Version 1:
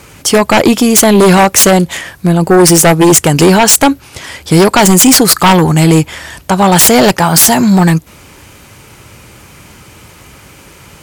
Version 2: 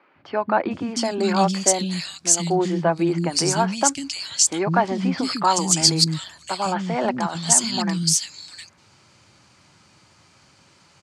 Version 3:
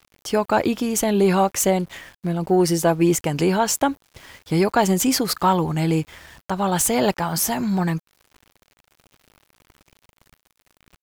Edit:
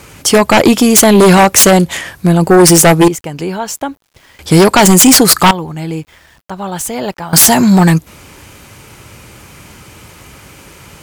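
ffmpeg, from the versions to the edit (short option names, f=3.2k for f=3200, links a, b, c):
-filter_complex "[2:a]asplit=2[a][b];[0:a]asplit=3[c][d][e];[c]atrim=end=3.082[f];[a]atrim=start=3.078:end=4.392[g];[d]atrim=start=4.388:end=5.512[h];[b]atrim=start=5.508:end=7.332[i];[e]atrim=start=7.328[j];[f][g]acrossfade=d=0.004:c1=hsin:c2=hsin[k];[k][h]acrossfade=d=0.004:c1=hsin:c2=hsin[l];[l][i]acrossfade=d=0.004:c1=hsin:c2=hsin[m];[m][j]acrossfade=d=0.004:c1=hsin:c2=hsin"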